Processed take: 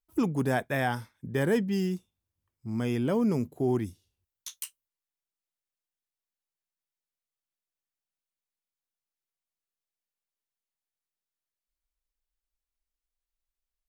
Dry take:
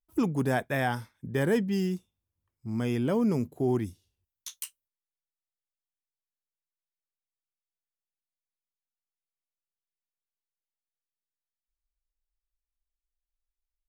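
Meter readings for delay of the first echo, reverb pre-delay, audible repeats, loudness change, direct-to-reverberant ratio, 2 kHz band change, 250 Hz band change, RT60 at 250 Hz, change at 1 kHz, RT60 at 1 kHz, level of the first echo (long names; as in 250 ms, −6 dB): no echo audible, no reverb audible, no echo audible, 0.0 dB, no reverb audible, 0.0 dB, 0.0 dB, no reverb audible, 0.0 dB, no reverb audible, no echo audible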